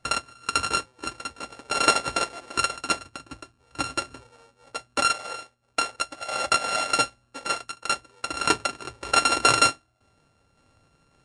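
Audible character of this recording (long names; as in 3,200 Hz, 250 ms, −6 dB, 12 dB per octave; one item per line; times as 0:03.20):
a buzz of ramps at a fixed pitch in blocks of 32 samples
sample-and-hold tremolo 3.5 Hz
Ogg Vorbis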